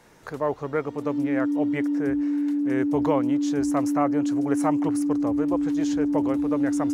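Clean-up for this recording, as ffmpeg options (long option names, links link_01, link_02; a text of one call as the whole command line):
ffmpeg -i in.wav -af "bandreject=frequency=290:width=30" out.wav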